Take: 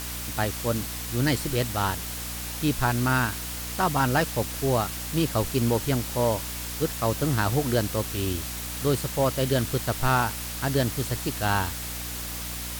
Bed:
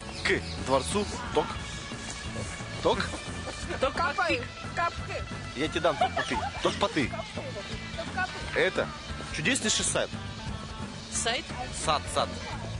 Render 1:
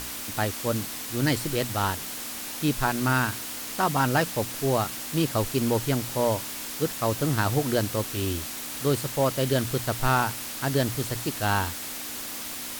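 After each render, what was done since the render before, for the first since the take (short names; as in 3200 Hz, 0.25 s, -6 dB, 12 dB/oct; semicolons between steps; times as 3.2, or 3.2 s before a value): notches 60/120/180 Hz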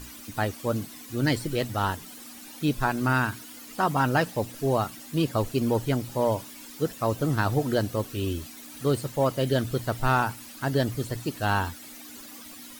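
denoiser 13 dB, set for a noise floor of -36 dBFS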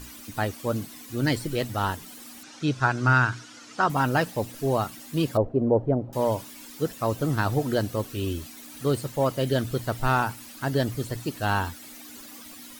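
2.43–3.9 speaker cabinet 120–7300 Hz, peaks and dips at 120 Hz +10 dB, 220 Hz -6 dB, 1400 Hz +7 dB, 5800 Hz +4 dB; 5.37–6.13 synth low-pass 630 Hz, resonance Q 2.2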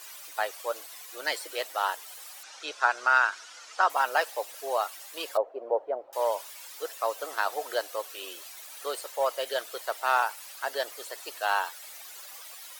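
inverse Chebyshev high-pass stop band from 210 Hz, stop band 50 dB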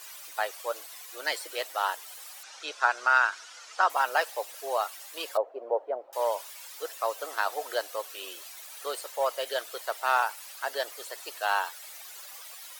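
HPF 260 Hz 6 dB/oct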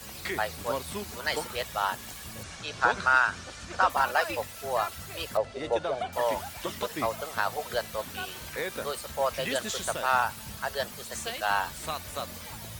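add bed -8 dB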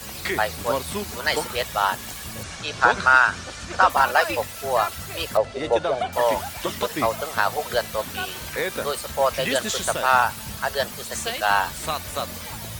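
gain +7 dB; limiter -3 dBFS, peak gain reduction 0.5 dB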